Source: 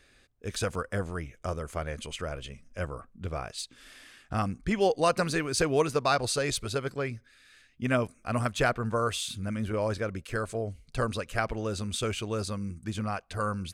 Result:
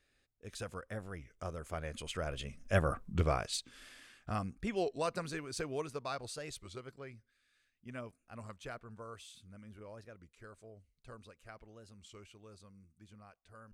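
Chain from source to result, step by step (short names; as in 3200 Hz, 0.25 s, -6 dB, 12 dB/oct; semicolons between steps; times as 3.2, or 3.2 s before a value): Doppler pass-by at 2.99, 7 m/s, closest 1.8 m; record warp 33 1/3 rpm, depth 160 cents; gain +7 dB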